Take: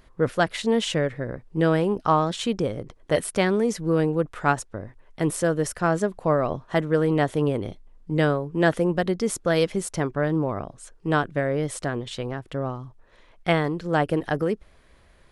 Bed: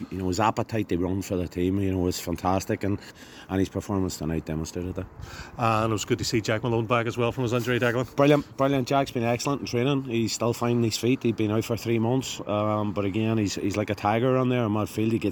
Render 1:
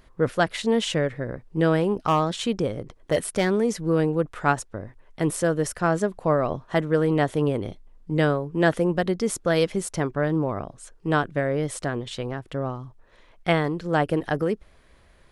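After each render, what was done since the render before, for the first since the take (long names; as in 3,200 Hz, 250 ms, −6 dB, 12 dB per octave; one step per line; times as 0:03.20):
0:01.82–0:03.57: hard clipping −14 dBFS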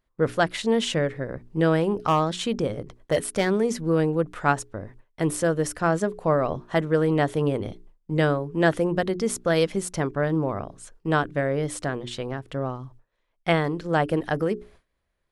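mains-hum notches 60/120/180/240/300/360/420 Hz
noise gate with hold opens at −41 dBFS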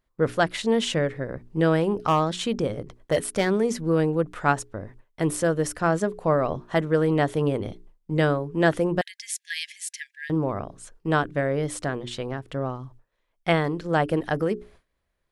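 0:09.01–0:10.30: linear-phase brick-wall high-pass 1,600 Hz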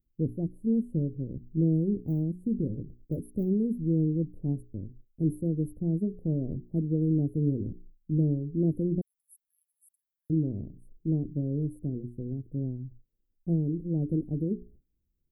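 inverse Chebyshev band-stop filter 1,200–6,200 Hz, stop band 70 dB
high-shelf EQ 7,400 Hz +5 dB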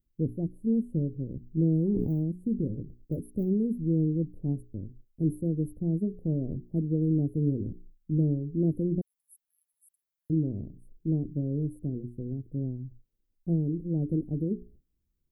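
0:01.58–0:02.14: level that may fall only so fast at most 24 dB per second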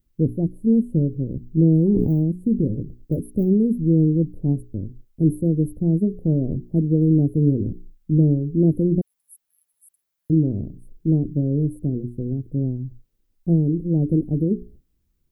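level +9 dB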